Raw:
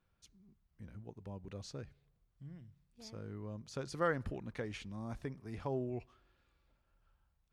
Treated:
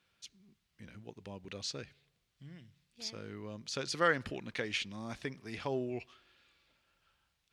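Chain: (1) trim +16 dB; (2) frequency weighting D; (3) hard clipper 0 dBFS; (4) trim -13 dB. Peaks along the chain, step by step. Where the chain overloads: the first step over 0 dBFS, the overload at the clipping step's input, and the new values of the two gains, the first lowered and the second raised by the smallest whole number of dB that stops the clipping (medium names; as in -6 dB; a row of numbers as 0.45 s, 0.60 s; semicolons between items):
-5.5 dBFS, -2.5 dBFS, -2.5 dBFS, -15.5 dBFS; nothing clips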